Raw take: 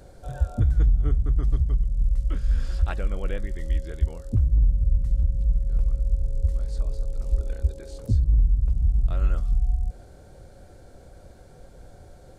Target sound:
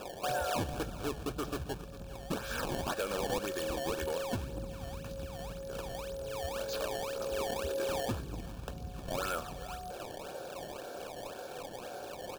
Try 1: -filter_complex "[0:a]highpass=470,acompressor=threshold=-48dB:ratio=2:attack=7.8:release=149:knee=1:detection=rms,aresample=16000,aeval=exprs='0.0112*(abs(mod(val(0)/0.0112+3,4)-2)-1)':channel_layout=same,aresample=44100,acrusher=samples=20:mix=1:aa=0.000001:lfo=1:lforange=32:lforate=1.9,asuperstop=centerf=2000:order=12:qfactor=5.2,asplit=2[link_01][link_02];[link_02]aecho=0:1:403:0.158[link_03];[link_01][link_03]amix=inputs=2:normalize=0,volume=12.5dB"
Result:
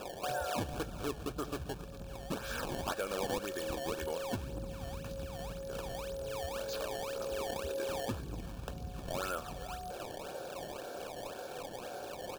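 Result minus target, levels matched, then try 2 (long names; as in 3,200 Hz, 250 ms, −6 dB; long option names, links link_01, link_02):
downward compressor: peak gain reduction +3 dB
-filter_complex "[0:a]highpass=470,acompressor=threshold=-41.5dB:ratio=2:attack=7.8:release=149:knee=1:detection=rms,aresample=16000,aeval=exprs='0.0112*(abs(mod(val(0)/0.0112+3,4)-2)-1)':channel_layout=same,aresample=44100,acrusher=samples=20:mix=1:aa=0.000001:lfo=1:lforange=32:lforate=1.9,asuperstop=centerf=2000:order=12:qfactor=5.2,asplit=2[link_01][link_02];[link_02]aecho=0:1:403:0.158[link_03];[link_01][link_03]amix=inputs=2:normalize=0,volume=12.5dB"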